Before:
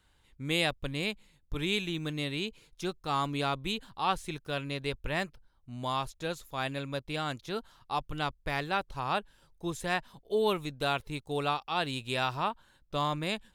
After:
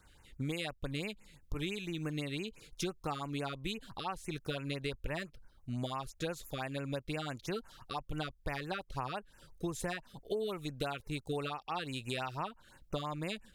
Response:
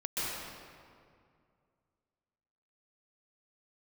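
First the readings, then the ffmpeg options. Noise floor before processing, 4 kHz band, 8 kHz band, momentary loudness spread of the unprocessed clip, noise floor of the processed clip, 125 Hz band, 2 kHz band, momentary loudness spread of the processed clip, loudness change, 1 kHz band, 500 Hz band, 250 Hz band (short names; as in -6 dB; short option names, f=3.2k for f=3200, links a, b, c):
-66 dBFS, -8.0 dB, -2.5 dB, 8 LU, -64 dBFS, -3.0 dB, -8.0 dB, 5 LU, -6.5 dB, -8.5 dB, -5.5 dB, -3.5 dB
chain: -af "acompressor=threshold=-39dB:ratio=12,afftfilt=real='re*(1-between(b*sr/1024,770*pow(4200/770,0.5+0.5*sin(2*PI*5.9*pts/sr))/1.41,770*pow(4200/770,0.5+0.5*sin(2*PI*5.9*pts/sr))*1.41))':imag='im*(1-between(b*sr/1024,770*pow(4200/770,0.5+0.5*sin(2*PI*5.9*pts/sr))/1.41,770*pow(4200/770,0.5+0.5*sin(2*PI*5.9*pts/sr))*1.41))':win_size=1024:overlap=0.75,volume=6dB"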